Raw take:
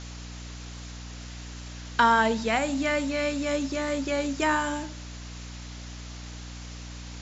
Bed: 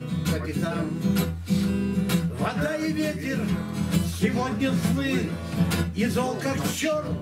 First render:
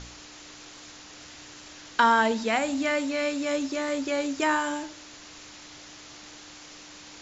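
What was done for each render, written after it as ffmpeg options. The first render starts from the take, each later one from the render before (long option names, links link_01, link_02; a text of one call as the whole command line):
ffmpeg -i in.wav -af "bandreject=frequency=60:width_type=h:width=4,bandreject=frequency=120:width_type=h:width=4,bandreject=frequency=180:width_type=h:width=4,bandreject=frequency=240:width_type=h:width=4" out.wav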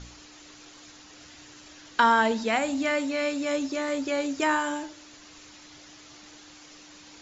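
ffmpeg -i in.wav -af "afftdn=noise_reduction=6:noise_floor=-47" out.wav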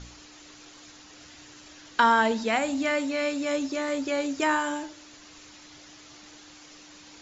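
ffmpeg -i in.wav -af anull out.wav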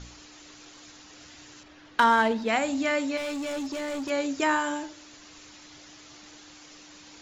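ffmpeg -i in.wav -filter_complex "[0:a]asettb=1/sr,asplit=3[link_01][link_02][link_03];[link_01]atrim=end=1.634[link_04];[link_02]atrim=start=1.63:end=2.49,asetpts=PTS-STARTPTS,afade=type=in:duration=0.004:curve=qsin,afade=type=out:start_time=0.856:duration=0.004:curve=qsin,adynamicsmooth=sensitivity=3:basefreq=3200[link_05];[link_03]atrim=start=2.486[link_06];[link_04][link_05]acrossfade=duration=0.004:curve1=hsin:curve2=qsin[link_07];[link_07][link_06]acrossfade=duration=0.004:curve1=qsin:curve2=hsin,asettb=1/sr,asplit=3[link_08][link_09][link_10];[link_08]atrim=end=3.174[link_11];[link_09]atrim=start=3.17:end=4.1,asetpts=PTS-STARTPTS,afade=type=in:duration=0.004:curve=qsin,afade=type=out:start_time=0.926:duration=0.004:curve=qsin,asoftclip=type=hard:threshold=-29.5dB[link_12];[link_10]atrim=start=4.096[link_13];[link_11][link_12]acrossfade=duration=0.004:curve1=hsin:curve2=qsin[link_14];[link_14][link_13]acrossfade=duration=0.004:curve1=qsin:curve2=hsin" out.wav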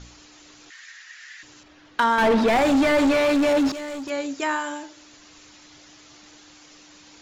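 ffmpeg -i in.wav -filter_complex "[0:a]asettb=1/sr,asplit=3[link_01][link_02][link_03];[link_01]atrim=end=0.704[link_04];[link_02]atrim=start=0.7:end=1.43,asetpts=PTS-STARTPTS,afade=type=in:duration=0.004:curve=qsin,afade=type=out:start_time=0.726:duration=0.004:curve=qsin,highpass=frequency=1800:width_type=q:width=8.4[link_05];[link_03]atrim=start=1.426[link_06];[link_04][link_05]acrossfade=duration=0.004:curve1=hsin:curve2=qsin[link_07];[link_07][link_06]acrossfade=duration=0.004:curve1=qsin:curve2=hsin,asettb=1/sr,asplit=3[link_08][link_09][link_10];[link_08]atrim=end=2.184[link_11];[link_09]atrim=start=2.18:end=3.72,asetpts=PTS-STARTPTS,afade=type=in:duration=0.004:curve=qsin,afade=type=out:start_time=1.536:duration=0.004:curve=qsin,asplit=2[link_12][link_13];[link_13]highpass=frequency=720:poles=1,volume=35dB,asoftclip=type=tanh:threshold=-10dB[link_14];[link_12][link_14]amix=inputs=2:normalize=0,lowpass=frequency=1100:poles=1,volume=-6dB[link_15];[link_10]atrim=start=3.716[link_16];[link_11][link_15]acrossfade=duration=0.004:curve1=hsin:curve2=qsin[link_17];[link_17][link_16]acrossfade=duration=0.004:curve1=qsin:curve2=hsin,asettb=1/sr,asplit=3[link_18][link_19][link_20];[link_18]atrim=end=4.344[link_21];[link_19]atrim=start=4.34:end=4.97,asetpts=PTS-STARTPTS,afade=type=in:duration=0.004:curve=qsin,afade=type=out:start_time=0.626:duration=0.004:curve=qsin,lowshelf=frequency=160:gain=-10.5[link_22];[link_20]atrim=start=4.966[link_23];[link_21][link_22]acrossfade=duration=0.004:curve1=hsin:curve2=qsin[link_24];[link_24][link_23]acrossfade=duration=0.004:curve1=qsin:curve2=hsin" out.wav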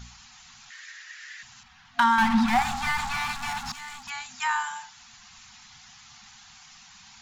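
ffmpeg -i in.wav -af "afftfilt=real='re*(1-between(b*sr/4096,250,710))':imag='im*(1-between(b*sr/4096,250,710))':win_size=4096:overlap=0.75,adynamicequalizer=threshold=0.0112:dfrequency=2800:dqfactor=1.1:tfrequency=2800:tqfactor=1.1:attack=5:release=100:ratio=0.375:range=2.5:mode=cutabove:tftype=bell" out.wav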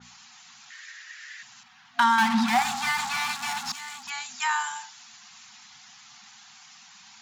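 ffmpeg -i in.wav -af "highpass=200,adynamicequalizer=threshold=0.01:dfrequency=3000:dqfactor=0.7:tfrequency=3000:tqfactor=0.7:attack=5:release=100:ratio=0.375:range=2.5:mode=boostabove:tftype=highshelf" out.wav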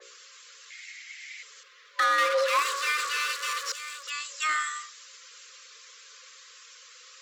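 ffmpeg -i in.wav -af "asoftclip=type=tanh:threshold=-18dB,afreqshift=310" out.wav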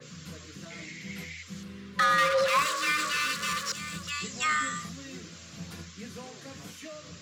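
ffmpeg -i in.wav -i bed.wav -filter_complex "[1:a]volume=-19dB[link_01];[0:a][link_01]amix=inputs=2:normalize=0" out.wav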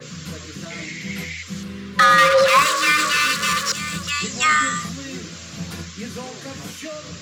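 ffmpeg -i in.wav -af "volume=10.5dB" out.wav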